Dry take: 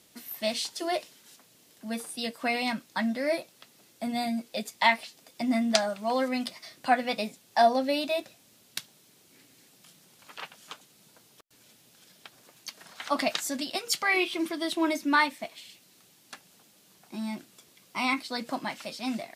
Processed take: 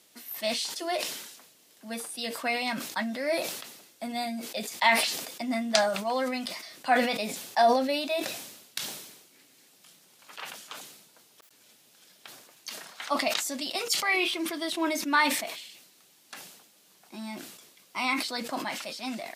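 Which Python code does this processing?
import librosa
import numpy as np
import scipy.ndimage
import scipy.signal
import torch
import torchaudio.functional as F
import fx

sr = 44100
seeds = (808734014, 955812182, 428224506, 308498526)

y = fx.peak_eq(x, sr, hz=1600.0, db=-6.0, octaves=0.25, at=(13.1, 14.2))
y = fx.highpass(y, sr, hz=350.0, slope=6)
y = fx.sustainer(y, sr, db_per_s=56.0)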